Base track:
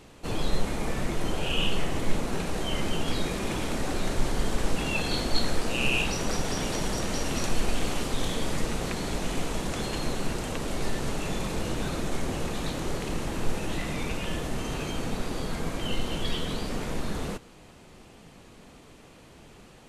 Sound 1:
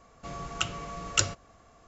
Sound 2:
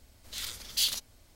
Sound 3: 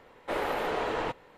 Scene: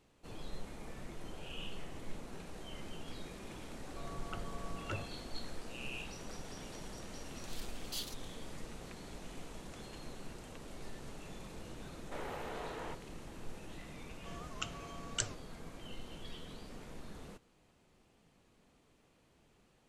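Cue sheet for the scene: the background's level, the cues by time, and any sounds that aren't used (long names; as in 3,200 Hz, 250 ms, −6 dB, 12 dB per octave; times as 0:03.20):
base track −18 dB
0:03.72: mix in 1 −8 dB + low-pass filter 1,300 Hz
0:07.15: mix in 2 −14.5 dB
0:11.83: mix in 3 −13.5 dB
0:14.01: mix in 1 −11 dB + wow of a warped record 78 rpm, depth 160 cents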